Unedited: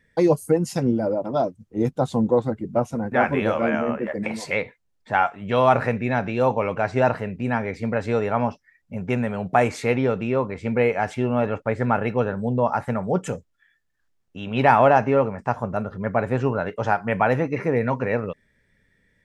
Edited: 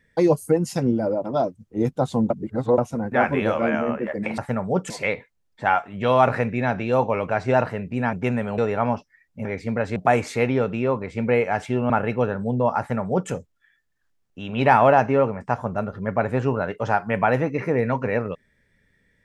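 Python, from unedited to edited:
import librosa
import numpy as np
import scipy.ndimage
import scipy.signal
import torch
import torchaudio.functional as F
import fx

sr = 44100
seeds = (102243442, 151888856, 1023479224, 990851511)

y = fx.edit(x, sr, fx.reverse_span(start_s=2.3, length_s=0.48),
    fx.swap(start_s=7.61, length_s=0.51, other_s=8.99, other_length_s=0.45),
    fx.cut(start_s=11.38, length_s=0.5),
    fx.duplicate(start_s=12.77, length_s=0.52, to_s=4.38), tone=tone)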